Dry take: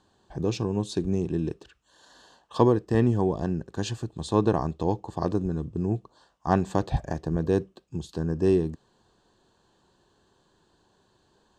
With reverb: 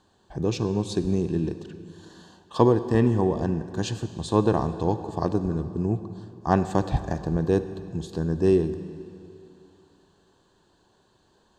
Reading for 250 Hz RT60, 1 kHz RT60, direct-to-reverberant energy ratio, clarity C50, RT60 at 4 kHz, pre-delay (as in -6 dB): 2.7 s, 2.8 s, 11.0 dB, 11.5 dB, 2.2 s, 38 ms